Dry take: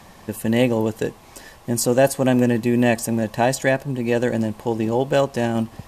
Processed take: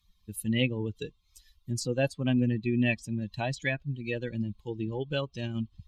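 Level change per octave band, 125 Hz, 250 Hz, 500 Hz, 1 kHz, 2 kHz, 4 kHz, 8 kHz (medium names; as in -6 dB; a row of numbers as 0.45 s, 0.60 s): -6.0 dB, -10.0 dB, -14.5 dB, -17.5 dB, -8.0 dB, -5.5 dB, -14.5 dB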